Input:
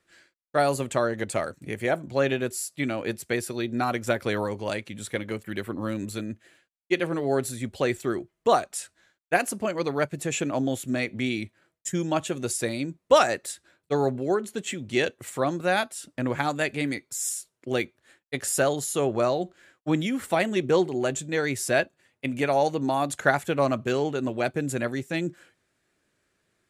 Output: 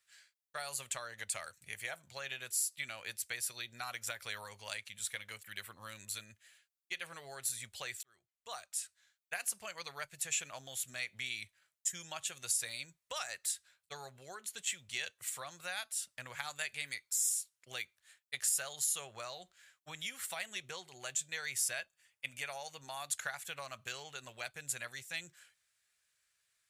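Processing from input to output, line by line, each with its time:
8.03–9.36 s: fade in
21.50–22.97 s: band-stop 4 kHz
whole clip: tilt EQ +1.5 dB/octave; compression 5:1, threshold -25 dBFS; amplifier tone stack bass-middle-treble 10-0-10; trim -3.5 dB

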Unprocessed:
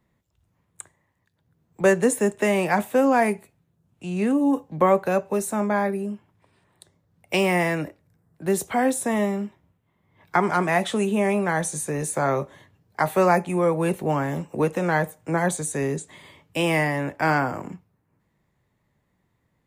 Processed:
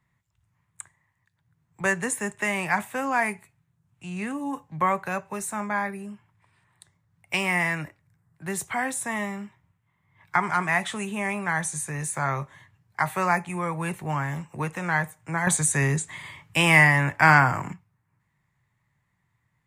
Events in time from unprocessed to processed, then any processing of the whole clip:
15.47–17.73 s: gain +7.5 dB
whole clip: graphic EQ 125/250/500/1000/2000/8000 Hz +9/-5/-8/+6/+8/+6 dB; trim -6.5 dB

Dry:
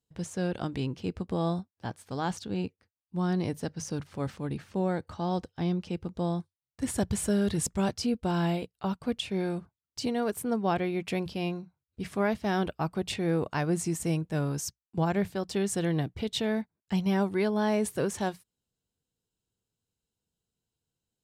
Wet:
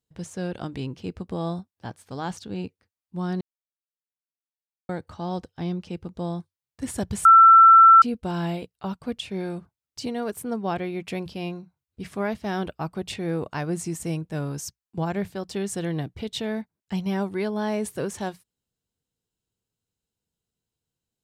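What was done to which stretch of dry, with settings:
3.41–4.89 s: mute
7.25–8.02 s: bleep 1.34 kHz -8 dBFS

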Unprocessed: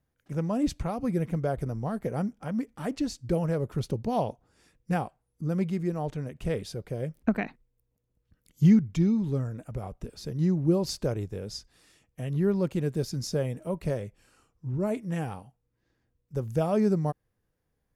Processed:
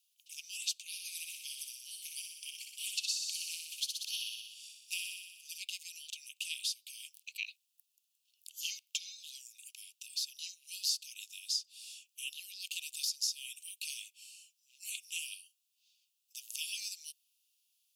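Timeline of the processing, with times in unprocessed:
0.83–5.58 s: thinning echo 61 ms, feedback 70%, level -5 dB
whole clip: steep high-pass 2.6 kHz 96 dB/octave; compression 3:1, threshold -48 dBFS; trim +14 dB

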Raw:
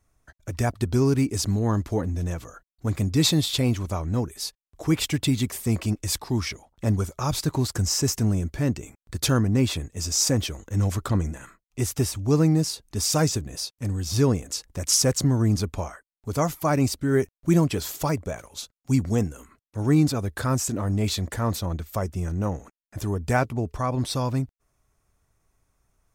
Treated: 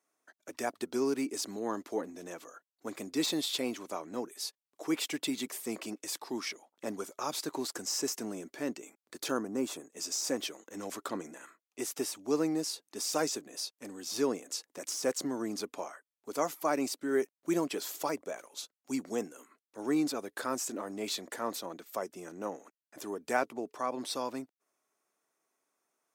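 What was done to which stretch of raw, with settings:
9.31–9.93 s: high-order bell 3 kHz -8.5 dB
whole clip: de-esser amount 45%; high-pass 280 Hz 24 dB/octave; trim -6 dB

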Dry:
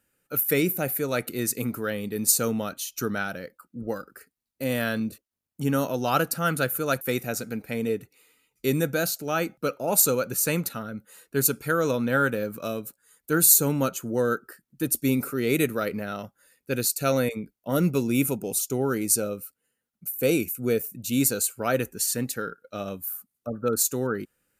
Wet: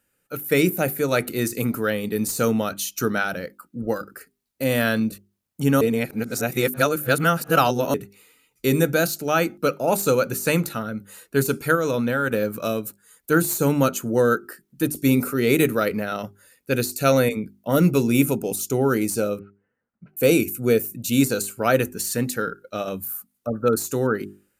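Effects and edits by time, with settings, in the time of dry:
5.81–7.94 s: reverse
11.75–12.31 s: level held to a coarse grid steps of 14 dB
19.39–20.17 s: inverse Chebyshev low-pass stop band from 7.6 kHz, stop band 70 dB
whole clip: de-esser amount 45%; hum notches 50/100/150/200/250/300/350/400 Hz; level rider gain up to 4.5 dB; trim +1.5 dB

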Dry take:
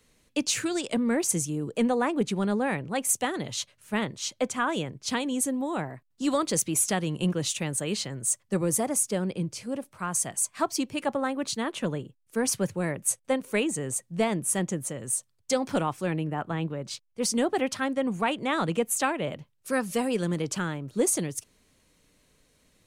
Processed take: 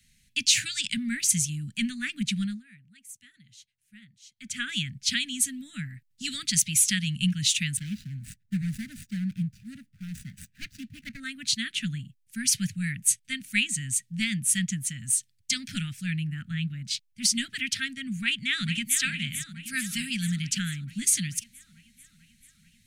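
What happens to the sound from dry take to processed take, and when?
2.40–4.59 s: dip -21.5 dB, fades 0.23 s
7.77–11.20 s: median filter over 41 samples
14.67–15.64 s: peaking EQ 880 Hz +6 dB 0.85 oct
18.16–18.99 s: echo throw 440 ms, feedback 70%, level -9.5 dB
whole clip: inverse Chebyshev band-stop 340–1100 Hz, stop band 40 dB; dynamic bell 3.4 kHz, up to +7 dB, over -45 dBFS, Q 0.71; trim +2 dB

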